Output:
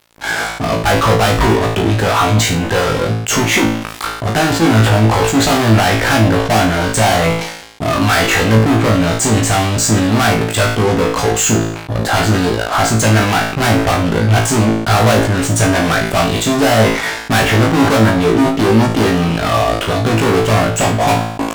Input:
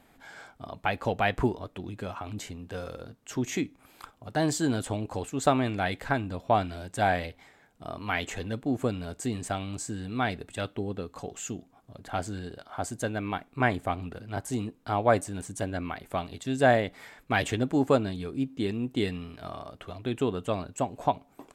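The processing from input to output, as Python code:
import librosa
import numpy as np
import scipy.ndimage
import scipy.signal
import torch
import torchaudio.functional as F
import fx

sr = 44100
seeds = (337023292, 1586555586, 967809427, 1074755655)

p1 = fx.env_lowpass_down(x, sr, base_hz=1900.0, full_db=-24.5)
p2 = fx.dynamic_eq(p1, sr, hz=1300.0, q=1.4, threshold_db=-43.0, ratio=4.0, max_db=5)
p3 = fx.fuzz(p2, sr, gain_db=43.0, gate_db=-52.0)
p4 = p3 + fx.room_flutter(p3, sr, wall_m=3.1, rt60_s=0.37, dry=0)
y = fx.sustainer(p4, sr, db_per_s=67.0)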